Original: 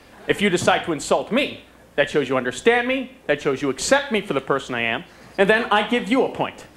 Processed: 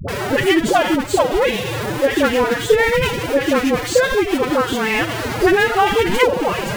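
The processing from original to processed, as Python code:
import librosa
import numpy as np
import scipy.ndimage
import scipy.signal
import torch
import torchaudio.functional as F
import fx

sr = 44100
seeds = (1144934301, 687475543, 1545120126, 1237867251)

y = x + 0.5 * 10.0 ** (-17.0 / 20.0) * np.sign(x)
y = fx.high_shelf(y, sr, hz=3000.0, db=-9.5)
y = fx.pitch_keep_formants(y, sr, semitones=11.0)
y = fx.dispersion(y, sr, late='highs', ms=85.0, hz=510.0)
y = F.gain(torch.from_numpy(y), 2.0).numpy()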